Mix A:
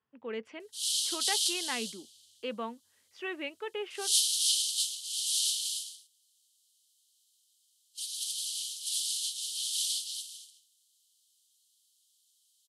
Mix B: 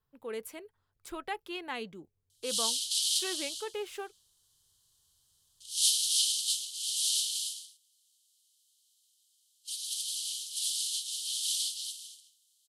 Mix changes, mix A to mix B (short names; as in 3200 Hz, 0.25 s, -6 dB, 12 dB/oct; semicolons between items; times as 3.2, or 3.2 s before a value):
speech: remove speaker cabinet 150–4800 Hz, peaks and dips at 150 Hz -8 dB, 230 Hz +7 dB, 1900 Hz +4 dB, 2800 Hz +5 dB, 4000 Hz -8 dB; background: entry +1.70 s